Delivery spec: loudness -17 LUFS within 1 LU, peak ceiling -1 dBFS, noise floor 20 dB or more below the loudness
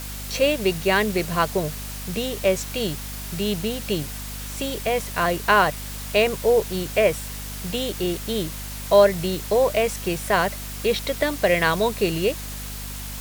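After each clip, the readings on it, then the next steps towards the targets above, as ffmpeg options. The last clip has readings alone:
hum 50 Hz; highest harmonic 250 Hz; hum level -33 dBFS; noise floor -33 dBFS; noise floor target -43 dBFS; loudness -23.0 LUFS; peak level -2.0 dBFS; loudness target -17.0 LUFS
-> -af "bandreject=f=50:t=h:w=4,bandreject=f=100:t=h:w=4,bandreject=f=150:t=h:w=4,bandreject=f=200:t=h:w=4,bandreject=f=250:t=h:w=4"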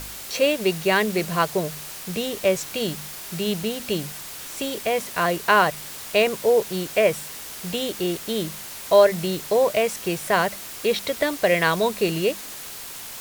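hum not found; noise floor -37 dBFS; noise floor target -43 dBFS
-> -af "afftdn=nr=6:nf=-37"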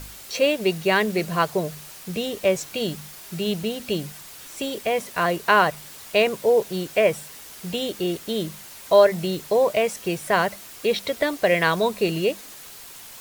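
noise floor -42 dBFS; noise floor target -43 dBFS
-> -af "afftdn=nr=6:nf=-42"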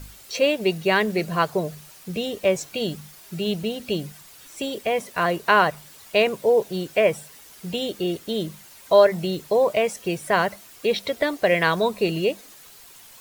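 noise floor -47 dBFS; loudness -23.0 LUFS; peak level -2.5 dBFS; loudness target -17.0 LUFS
-> -af "volume=2,alimiter=limit=0.891:level=0:latency=1"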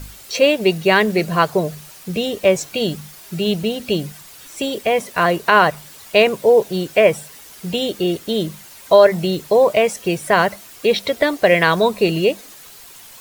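loudness -17.5 LUFS; peak level -1.0 dBFS; noise floor -41 dBFS

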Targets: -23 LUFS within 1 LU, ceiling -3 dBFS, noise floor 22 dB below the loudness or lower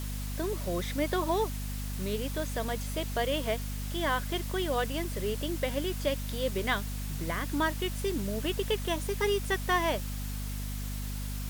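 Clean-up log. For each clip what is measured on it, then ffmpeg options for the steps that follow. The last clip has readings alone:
hum 50 Hz; highest harmonic 250 Hz; hum level -33 dBFS; noise floor -35 dBFS; noise floor target -54 dBFS; loudness -32.0 LUFS; peak level -15.0 dBFS; loudness target -23.0 LUFS
-> -af "bandreject=f=50:t=h:w=4,bandreject=f=100:t=h:w=4,bandreject=f=150:t=h:w=4,bandreject=f=200:t=h:w=4,bandreject=f=250:t=h:w=4"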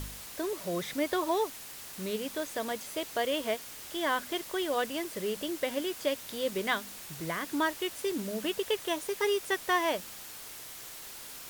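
hum not found; noise floor -45 dBFS; noise floor target -55 dBFS
-> -af "afftdn=nr=10:nf=-45"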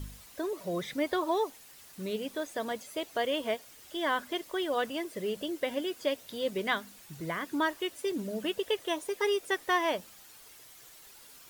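noise floor -54 dBFS; noise floor target -55 dBFS
-> -af "afftdn=nr=6:nf=-54"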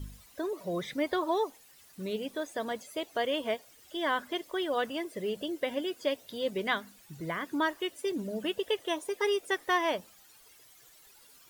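noise floor -58 dBFS; loudness -33.0 LUFS; peak level -14.5 dBFS; loudness target -23.0 LUFS
-> -af "volume=3.16"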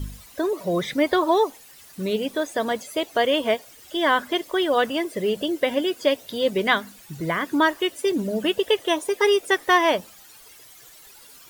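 loudness -23.0 LUFS; peak level -4.5 dBFS; noise floor -48 dBFS

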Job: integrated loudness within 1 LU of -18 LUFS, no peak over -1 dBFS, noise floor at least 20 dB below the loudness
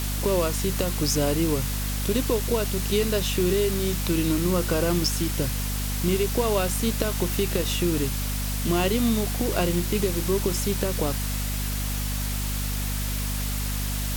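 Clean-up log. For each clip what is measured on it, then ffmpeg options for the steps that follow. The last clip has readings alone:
hum 50 Hz; highest harmonic 250 Hz; hum level -26 dBFS; noise floor -28 dBFS; noise floor target -45 dBFS; loudness -25.0 LUFS; peak level -8.5 dBFS; loudness target -18.0 LUFS
-> -af "bandreject=f=50:t=h:w=4,bandreject=f=100:t=h:w=4,bandreject=f=150:t=h:w=4,bandreject=f=200:t=h:w=4,bandreject=f=250:t=h:w=4"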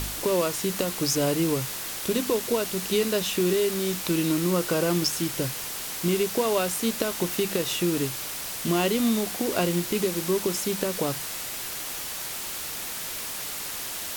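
hum not found; noise floor -34 dBFS; noise floor target -46 dBFS
-> -af "afftdn=nr=12:nf=-34"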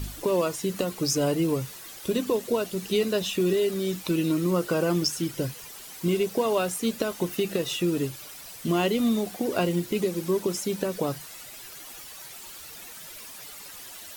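noise floor -43 dBFS; noise floor target -47 dBFS
-> -af "afftdn=nr=6:nf=-43"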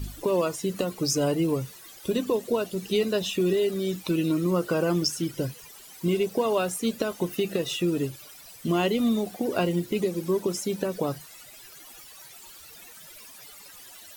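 noise floor -48 dBFS; loudness -27.0 LUFS; peak level -10.5 dBFS; loudness target -18.0 LUFS
-> -af "volume=2.82"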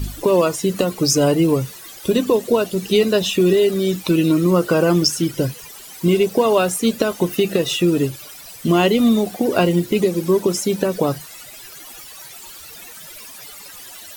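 loudness -18.0 LUFS; peak level -1.5 dBFS; noise floor -39 dBFS

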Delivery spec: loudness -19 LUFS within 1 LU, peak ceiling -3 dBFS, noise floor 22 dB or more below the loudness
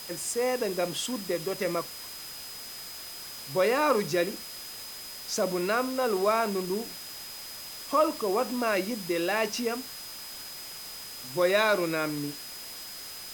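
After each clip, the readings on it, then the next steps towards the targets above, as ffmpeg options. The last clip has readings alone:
steady tone 5 kHz; tone level -43 dBFS; noise floor -42 dBFS; noise floor target -52 dBFS; loudness -30.0 LUFS; peak level -10.5 dBFS; loudness target -19.0 LUFS
-> -af "bandreject=f=5000:w=30"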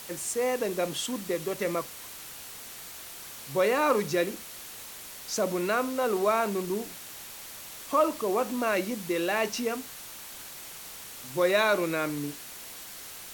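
steady tone not found; noise floor -44 dBFS; noise floor target -51 dBFS
-> -af "afftdn=nr=7:nf=-44"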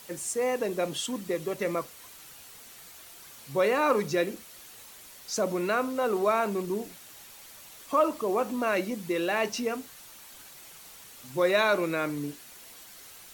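noise floor -49 dBFS; noise floor target -51 dBFS
-> -af "afftdn=nr=6:nf=-49"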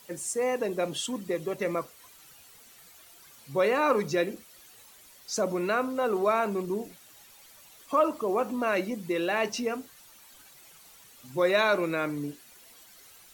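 noise floor -54 dBFS; loudness -28.5 LUFS; peak level -10.5 dBFS; loudness target -19.0 LUFS
-> -af "volume=2.99,alimiter=limit=0.708:level=0:latency=1"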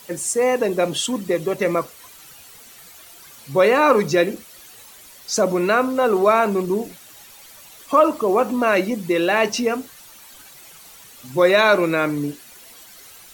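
loudness -19.0 LUFS; peak level -3.0 dBFS; noise floor -45 dBFS

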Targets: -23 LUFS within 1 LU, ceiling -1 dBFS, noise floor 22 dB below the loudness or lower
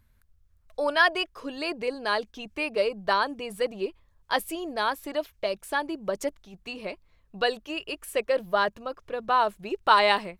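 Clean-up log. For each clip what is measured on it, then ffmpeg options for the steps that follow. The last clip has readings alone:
loudness -27.5 LUFS; peak level -6.5 dBFS; loudness target -23.0 LUFS
-> -af "volume=1.68"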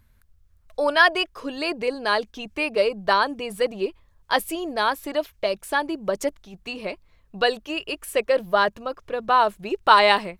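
loudness -23.0 LUFS; peak level -2.0 dBFS; noise floor -60 dBFS

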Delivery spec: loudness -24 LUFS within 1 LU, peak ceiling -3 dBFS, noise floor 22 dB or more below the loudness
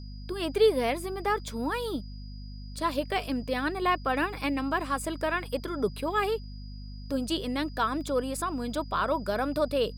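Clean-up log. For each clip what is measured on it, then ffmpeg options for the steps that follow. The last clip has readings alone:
hum 50 Hz; highest harmonic 250 Hz; hum level -38 dBFS; steady tone 4.9 kHz; tone level -53 dBFS; loudness -29.5 LUFS; peak level -12.0 dBFS; loudness target -24.0 LUFS
-> -af "bandreject=f=50:t=h:w=6,bandreject=f=100:t=h:w=6,bandreject=f=150:t=h:w=6,bandreject=f=200:t=h:w=6,bandreject=f=250:t=h:w=6"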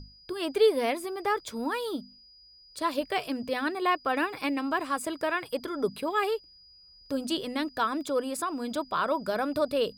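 hum not found; steady tone 4.9 kHz; tone level -53 dBFS
-> -af "bandreject=f=4900:w=30"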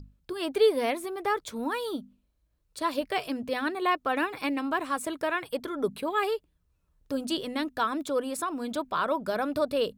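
steady tone not found; loudness -30.0 LUFS; peak level -12.5 dBFS; loudness target -24.0 LUFS
-> -af "volume=2"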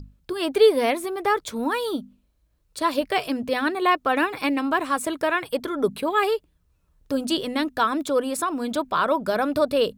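loudness -23.5 LUFS; peak level -6.5 dBFS; noise floor -66 dBFS

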